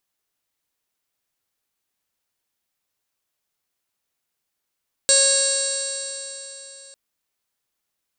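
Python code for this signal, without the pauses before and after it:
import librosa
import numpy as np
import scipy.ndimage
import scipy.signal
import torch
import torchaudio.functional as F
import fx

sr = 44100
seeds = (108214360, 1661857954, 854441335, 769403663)

y = fx.additive_stiff(sr, length_s=1.85, hz=547.0, level_db=-21.0, upper_db=(-18, -7.0, -19.5, -11.0, -16.0, -1.0, 1, -9, -4, -9.0, -8.0, 1.5, 5.5), decay_s=3.57, stiffness=0.00067)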